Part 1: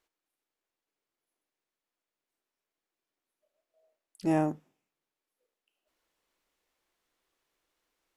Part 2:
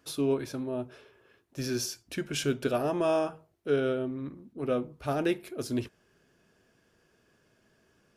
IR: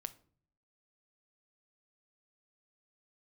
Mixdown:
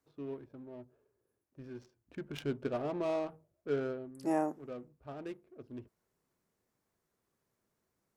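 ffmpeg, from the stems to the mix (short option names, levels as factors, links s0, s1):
-filter_complex "[0:a]highpass=350,equalizer=f=3100:t=o:w=1.2:g=-10,volume=0.841[s0];[1:a]adynamicequalizer=threshold=0.00316:dfrequency=1800:dqfactor=0.94:tfrequency=1800:tqfactor=0.94:attack=5:release=100:ratio=0.375:range=2:mode=cutabove:tftype=bell,adynamicsmooth=sensitivity=4.5:basefreq=640,volume=0.473,afade=t=in:st=1.91:d=0.45:silence=0.398107,afade=t=out:st=3.79:d=0.31:silence=0.375837[s1];[s0][s1]amix=inputs=2:normalize=0"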